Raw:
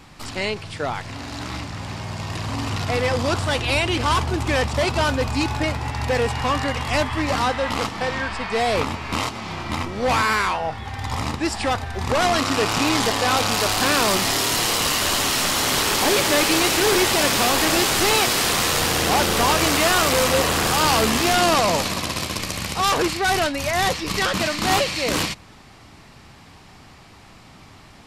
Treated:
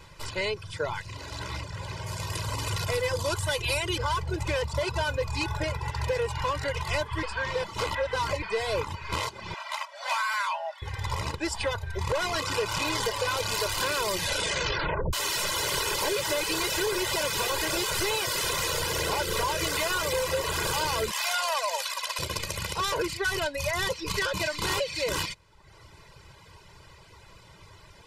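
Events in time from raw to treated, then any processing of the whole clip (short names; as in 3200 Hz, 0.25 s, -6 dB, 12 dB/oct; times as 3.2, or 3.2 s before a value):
2.06–3.98 bell 12000 Hz +11.5 dB 1.4 oct
7.23–8.42 reverse
9.54–10.82 Chebyshev high-pass 570 Hz, order 10
14.13 tape stop 1.00 s
21.11–22.19 steep high-pass 600 Hz
whole clip: reverb removal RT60 0.8 s; comb 2 ms, depth 90%; compressor, threshold -19 dBFS; gain -5.5 dB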